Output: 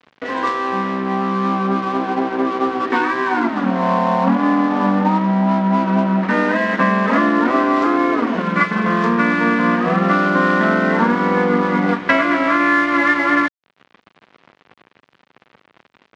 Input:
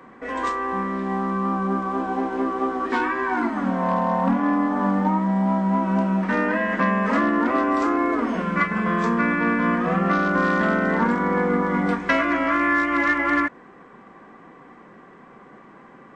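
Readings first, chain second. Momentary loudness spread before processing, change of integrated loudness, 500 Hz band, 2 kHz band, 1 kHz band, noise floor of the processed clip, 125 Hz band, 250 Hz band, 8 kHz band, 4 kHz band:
5 LU, +5.0 dB, +5.5 dB, +5.0 dB, +5.5 dB, -62 dBFS, +4.5 dB, +5.0 dB, n/a, +8.5 dB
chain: in parallel at +3 dB: compressor, threshold -36 dBFS, peak gain reduction 19 dB; on the sum: crossover distortion -33 dBFS; BPF 120–4200 Hz; gain +5 dB

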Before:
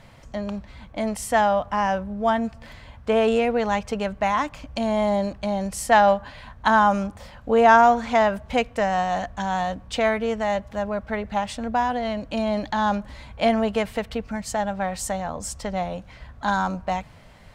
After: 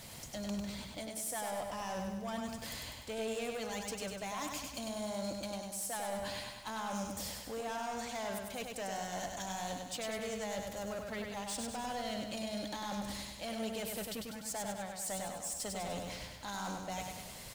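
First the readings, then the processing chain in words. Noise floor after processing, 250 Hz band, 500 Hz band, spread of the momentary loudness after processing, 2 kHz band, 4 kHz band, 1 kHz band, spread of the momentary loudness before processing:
-49 dBFS, -15.5 dB, -17.5 dB, 4 LU, -17.5 dB, -7.5 dB, -20.0 dB, 13 LU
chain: bell 1600 Hz -13 dB 3 oct; harmonic-percussive split percussive +6 dB; tilt +3.5 dB/oct; reverse; compressor 10:1, threshold -38 dBFS, peak gain reduction 23 dB; reverse; soft clip -39.5 dBFS, distortion -12 dB; crackle 140/s -52 dBFS; on a send: feedback echo 99 ms, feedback 56%, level -4 dB; on the sum: gain +3.5 dB

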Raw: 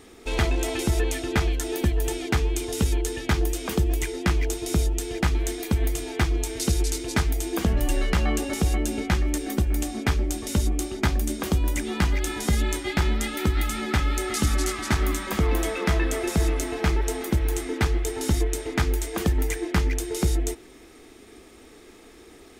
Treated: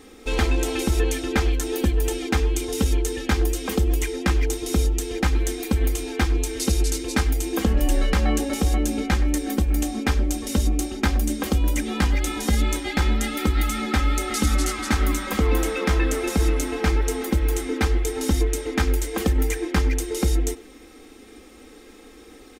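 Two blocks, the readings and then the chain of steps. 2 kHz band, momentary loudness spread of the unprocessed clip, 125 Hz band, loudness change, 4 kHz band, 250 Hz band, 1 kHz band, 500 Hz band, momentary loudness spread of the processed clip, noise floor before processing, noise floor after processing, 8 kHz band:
+1.5 dB, 2 LU, +1.5 dB, +2.0 dB, +1.5 dB, +3.0 dB, +2.0 dB, +2.0 dB, 2 LU, -49 dBFS, -46 dBFS, +1.5 dB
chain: bell 410 Hz +7.5 dB 0.22 oct; comb 3.8 ms, depth 70%; speakerphone echo 0.1 s, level -18 dB

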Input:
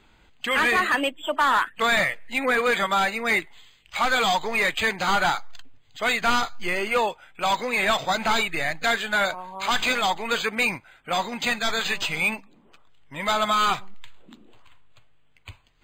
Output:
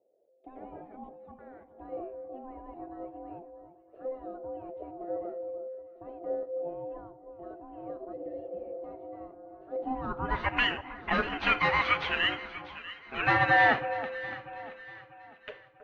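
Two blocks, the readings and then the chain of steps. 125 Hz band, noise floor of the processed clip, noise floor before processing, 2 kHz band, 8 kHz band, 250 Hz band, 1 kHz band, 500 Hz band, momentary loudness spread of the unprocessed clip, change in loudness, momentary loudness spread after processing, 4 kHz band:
-2.0 dB, -58 dBFS, -58 dBFS, -7.5 dB, under -30 dB, -7.5 dB, -8.5 dB, -7.5 dB, 7 LU, -7.0 dB, 22 LU, -11.0 dB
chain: nonlinear frequency compression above 3400 Hz 1.5:1; gate -48 dBFS, range -12 dB; high shelf 2900 Hz +7 dB; in parallel at -2 dB: compressor, threshold -35 dBFS, peak gain reduction 18 dB; on the sum: low-pass sweep 140 Hz -> 1700 Hz, 9.69–10.58; ring modulator 520 Hz; on a send: echo with dull and thin repeats by turns 0.321 s, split 1300 Hz, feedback 62%, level -11 dB; on the sum: Schroeder reverb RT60 0.6 s, combs from 27 ms, DRR 17.5 dB; spectral repair 8.16–8.74, 340–1700 Hz after; gain -4 dB

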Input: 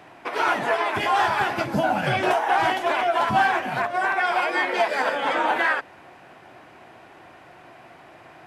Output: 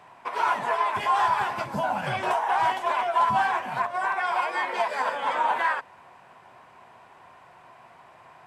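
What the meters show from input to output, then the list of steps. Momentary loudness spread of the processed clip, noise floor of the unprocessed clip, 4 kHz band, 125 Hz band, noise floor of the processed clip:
5 LU, -48 dBFS, -6.5 dB, -6.5 dB, -53 dBFS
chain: thirty-one-band EQ 315 Hz -11 dB, 1000 Hz +11 dB, 8000 Hz +5 dB; gain -6.5 dB

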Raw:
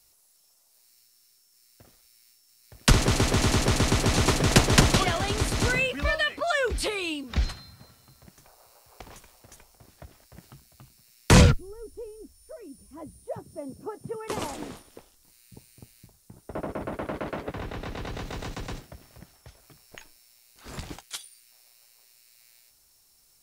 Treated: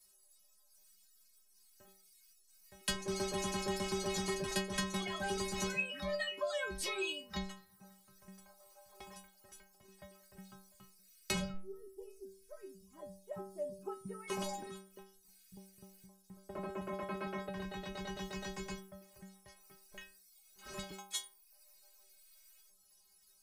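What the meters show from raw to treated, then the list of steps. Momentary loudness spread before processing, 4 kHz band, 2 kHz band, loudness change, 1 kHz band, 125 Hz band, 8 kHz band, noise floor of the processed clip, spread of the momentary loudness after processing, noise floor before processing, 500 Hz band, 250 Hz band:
22 LU, -12.5 dB, -13.0 dB, -14.5 dB, -12.5 dB, -21.5 dB, -12.5 dB, -68 dBFS, 21 LU, -62 dBFS, -10.5 dB, -14.0 dB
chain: reverb removal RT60 0.81 s; compressor 10:1, threshold -28 dBFS, peak gain reduction 17 dB; metallic resonator 190 Hz, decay 0.51 s, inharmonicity 0.008; gain +10.5 dB

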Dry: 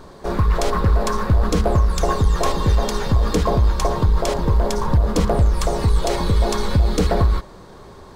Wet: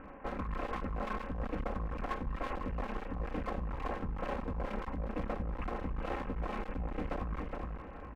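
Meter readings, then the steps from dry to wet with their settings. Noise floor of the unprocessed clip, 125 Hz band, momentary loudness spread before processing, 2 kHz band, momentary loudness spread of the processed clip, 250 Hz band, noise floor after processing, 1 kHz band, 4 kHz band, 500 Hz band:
-41 dBFS, -22.5 dB, 2 LU, -13.0 dB, 2 LU, -16.0 dB, -46 dBFS, -15.5 dB, -25.0 dB, -18.5 dB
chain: minimum comb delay 3.8 ms; feedback echo 0.418 s, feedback 27%, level -14 dB; reverse; compressor 6:1, threshold -24 dBFS, peak gain reduction 13 dB; reverse; steep low-pass 2800 Hz 96 dB/oct; one-sided clip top -37.5 dBFS, bottom -19.5 dBFS; gain -5.5 dB

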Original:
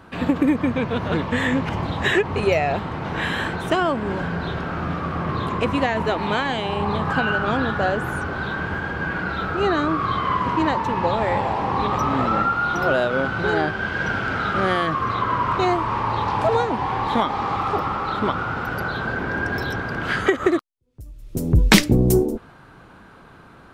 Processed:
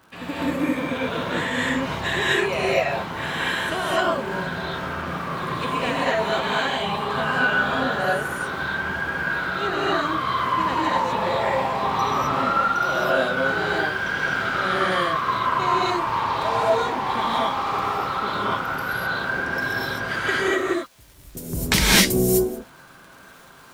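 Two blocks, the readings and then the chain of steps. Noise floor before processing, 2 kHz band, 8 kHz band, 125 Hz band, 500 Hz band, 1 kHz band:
-47 dBFS, +1.5 dB, n/a, -6.5 dB, -1.5 dB, -0.5 dB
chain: tilt +2 dB/oct; crackle 92/s -31 dBFS; non-linear reverb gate 0.28 s rising, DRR -7.5 dB; gain -8.5 dB

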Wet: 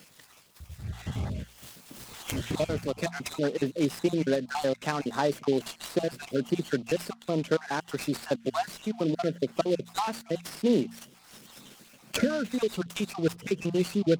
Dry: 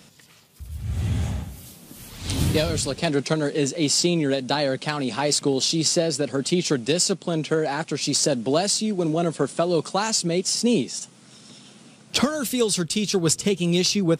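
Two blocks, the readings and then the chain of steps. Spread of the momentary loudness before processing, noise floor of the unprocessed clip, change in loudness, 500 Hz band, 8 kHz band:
10 LU, -51 dBFS, -7.5 dB, -5.0 dB, -18.0 dB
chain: random spectral dropouts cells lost 45%; low shelf 130 Hz -7.5 dB; treble ducked by the level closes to 2000 Hz, closed at -24 dBFS; high shelf 9500 Hz +9.5 dB; de-hum 57.36 Hz, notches 4; noise-modulated delay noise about 3300 Hz, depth 0.034 ms; gain -1.5 dB

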